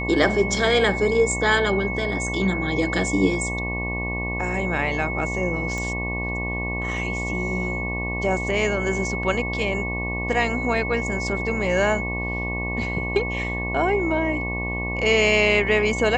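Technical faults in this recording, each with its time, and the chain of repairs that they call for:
buzz 60 Hz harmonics 19 -29 dBFS
tone 2200 Hz -28 dBFS
5.78 pop -17 dBFS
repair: de-click; de-hum 60 Hz, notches 19; notch 2200 Hz, Q 30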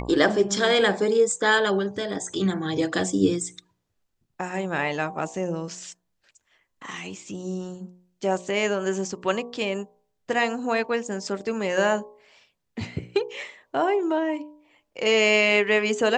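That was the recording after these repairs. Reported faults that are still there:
none

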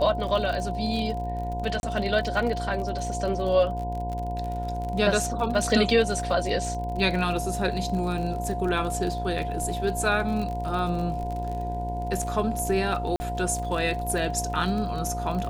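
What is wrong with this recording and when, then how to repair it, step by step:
buzz 60 Hz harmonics 17 -32 dBFS
crackle 41/s -31 dBFS
tone 710 Hz -31 dBFS
1.8–1.83 gap 31 ms
13.16–13.2 gap 40 ms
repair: de-click; de-hum 60 Hz, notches 17; notch 710 Hz, Q 30; interpolate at 1.8, 31 ms; interpolate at 13.16, 40 ms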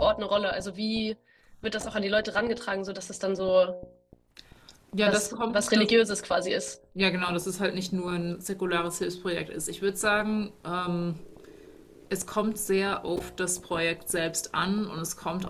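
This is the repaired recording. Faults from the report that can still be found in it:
none

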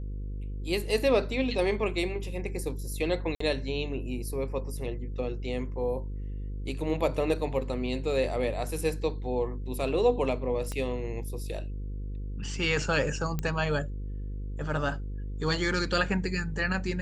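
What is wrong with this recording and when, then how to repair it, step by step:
buzz 50 Hz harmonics 10 -35 dBFS
3.35–3.4 gap 54 ms
10.72 pop -21 dBFS
13.39 pop -17 dBFS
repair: de-click; de-hum 50 Hz, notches 10; interpolate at 3.35, 54 ms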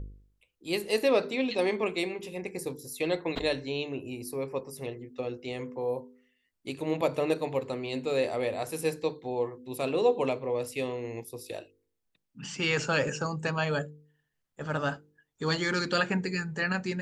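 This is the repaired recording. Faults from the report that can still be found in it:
10.72 pop

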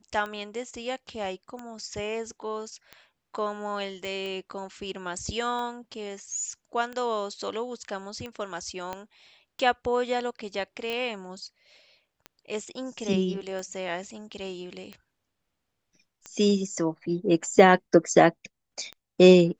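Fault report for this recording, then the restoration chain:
tick 45 rpm -24 dBFS
4.05 pop
8.93 pop -19 dBFS
10.9 pop -18 dBFS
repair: de-click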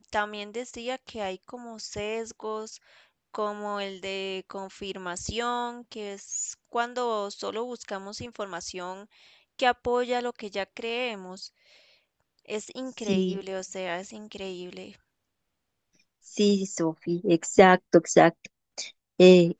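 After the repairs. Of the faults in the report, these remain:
8.93 pop

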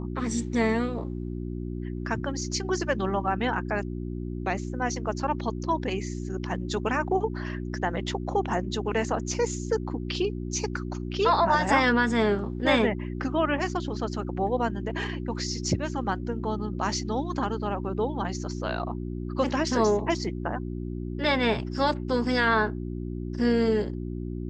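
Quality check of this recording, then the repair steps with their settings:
hum 60 Hz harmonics 6 -33 dBFS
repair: de-hum 60 Hz, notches 6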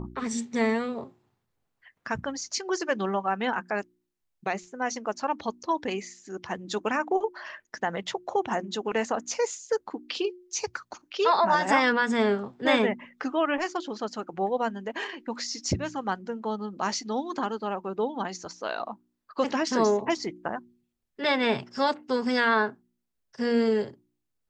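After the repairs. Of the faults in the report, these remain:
none

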